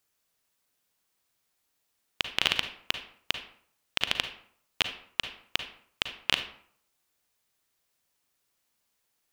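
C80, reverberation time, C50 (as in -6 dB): 13.5 dB, 0.60 s, 9.5 dB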